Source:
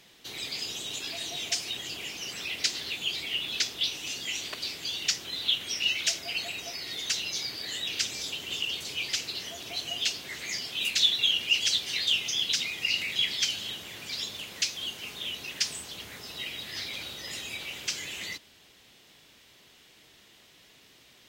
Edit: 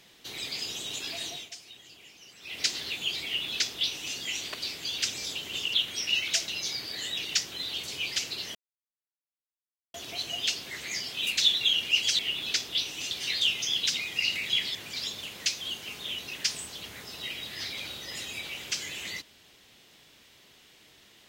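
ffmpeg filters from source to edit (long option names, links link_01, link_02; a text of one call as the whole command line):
ffmpeg -i in.wav -filter_complex "[0:a]asplit=12[link_01][link_02][link_03][link_04][link_05][link_06][link_07][link_08][link_09][link_10][link_11][link_12];[link_01]atrim=end=1.49,asetpts=PTS-STARTPTS,afade=type=out:start_time=1.26:duration=0.23:silence=0.188365[link_13];[link_02]atrim=start=1.49:end=2.41,asetpts=PTS-STARTPTS,volume=-14.5dB[link_14];[link_03]atrim=start=2.41:end=4.982,asetpts=PTS-STARTPTS,afade=type=in:duration=0.23:silence=0.188365[link_15];[link_04]atrim=start=7.948:end=8.712[link_16];[link_05]atrim=start=5.468:end=6.212[link_17];[link_06]atrim=start=7.178:end=7.952[link_18];[link_07]atrim=start=4.978:end=5.472[link_19];[link_08]atrim=start=8.708:end=9.52,asetpts=PTS-STARTPTS,afade=type=out:start_time=0.808:duration=0.004:curve=hsin,apad=pad_dur=1.39[link_20];[link_09]atrim=start=9.52:end=11.772,asetpts=PTS-STARTPTS,afade=type=in:duration=0.004:curve=hsin[link_21];[link_10]atrim=start=3.248:end=4.172[link_22];[link_11]atrim=start=11.768:end=13.412[link_23];[link_12]atrim=start=13.908[link_24];[link_13][link_14][link_15]concat=n=3:v=0:a=1[link_25];[link_25][link_16]acrossfade=duration=0.004:curve1=hsin:curve2=hsin[link_26];[link_26][link_17]acrossfade=duration=0.004:curve1=hsin:curve2=hsin[link_27];[link_27][link_18]acrossfade=duration=0.004:curve1=hsin:curve2=hsin[link_28];[link_28][link_19]acrossfade=duration=0.004:curve1=hsin:curve2=hsin[link_29];[link_20][link_21]concat=n=2:v=0:a=1[link_30];[link_29][link_30]acrossfade=duration=0.004:curve1=hsin:curve2=hsin[link_31];[link_31][link_22]acrossfade=duration=0.004:curve1=hsin:curve2=hsin[link_32];[link_32][link_23]acrossfade=duration=0.004:curve1=hsin:curve2=hsin[link_33];[link_33][link_24]acrossfade=duration=0.004:curve1=hsin:curve2=hsin" out.wav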